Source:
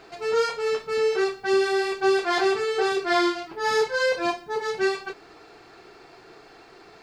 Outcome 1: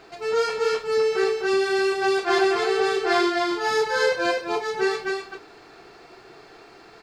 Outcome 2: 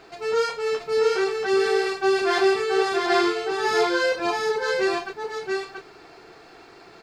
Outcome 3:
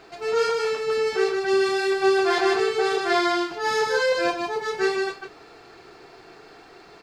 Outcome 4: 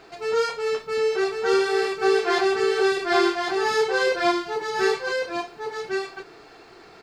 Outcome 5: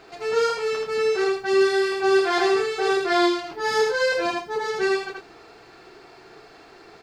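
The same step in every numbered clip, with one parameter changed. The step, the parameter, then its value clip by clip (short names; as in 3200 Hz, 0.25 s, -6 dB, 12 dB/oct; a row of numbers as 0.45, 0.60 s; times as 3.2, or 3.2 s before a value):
echo, time: 253, 681, 153, 1102, 80 ms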